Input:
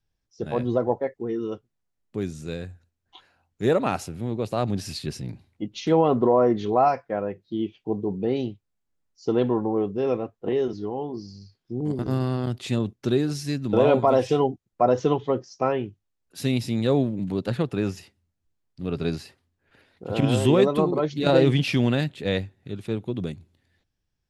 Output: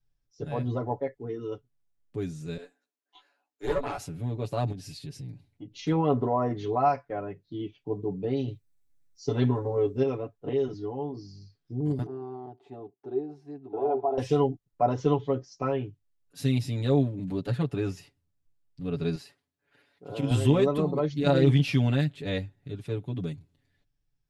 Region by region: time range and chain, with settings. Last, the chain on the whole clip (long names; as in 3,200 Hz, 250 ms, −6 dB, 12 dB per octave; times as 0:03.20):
0:02.57–0:03.98: Butterworth high-pass 290 Hz + double-tracking delay 16 ms −3.5 dB + tube saturation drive 16 dB, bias 0.7
0:04.72–0:05.79: parametric band 1,200 Hz −6 dB 1.1 octaves + downward compressor 2 to 1, threshold −38 dBFS
0:08.47–0:10.03: high-shelf EQ 4,900 Hz +8.5 dB + comb filter 7.5 ms, depth 96%
0:12.06–0:14.18: pair of resonant band-passes 550 Hz, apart 0.99 octaves + parametric band 610 Hz +9.5 dB 0.64 octaves
0:19.15–0:20.31: high-pass filter 350 Hz 6 dB per octave + dynamic equaliser 1,800 Hz, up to −7 dB, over −47 dBFS, Q 0.78
whole clip: low-shelf EQ 110 Hz +9.5 dB; comb filter 7 ms, depth 90%; level −8 dB